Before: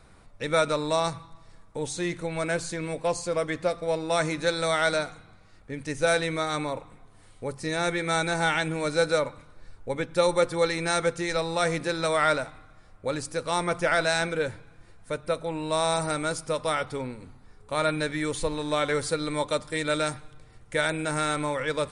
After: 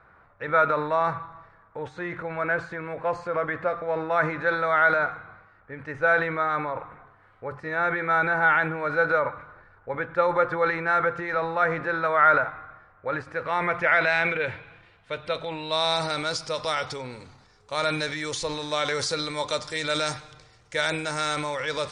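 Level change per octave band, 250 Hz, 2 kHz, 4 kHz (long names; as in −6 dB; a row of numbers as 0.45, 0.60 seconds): −3.5, +5.5, +0.5 decibels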